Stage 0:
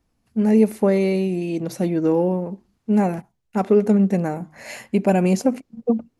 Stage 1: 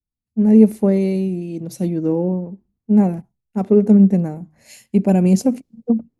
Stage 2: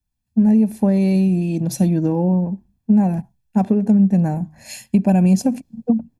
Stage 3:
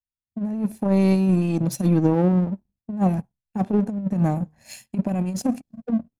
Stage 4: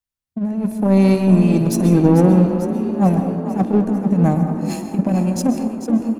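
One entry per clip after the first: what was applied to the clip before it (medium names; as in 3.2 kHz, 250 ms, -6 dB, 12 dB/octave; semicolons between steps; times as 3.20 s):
FFT filter 190 Hz 0 dB, 1.4 kHz -13 dB, 9.9 kHz -7 dB; three bands expanded up and down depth 70%; trim +5 dB
compression 6:1, threshold -20 dBFS, peak gain reduction 14 dB; comb 1.2 ms, depth 56%; trim +7 dB
compressor with a negative ratio -16 dBFS, ratio -0.5; power-law waveshaper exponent 1.4
frequency-shifting echo 445 ms, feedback 61%, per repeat +39 Hz, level -11 dB; plate-style reverb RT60 1.3 s, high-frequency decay 0.3×, pre-delay 115 ms, DRR 7 dB; trim +5 dB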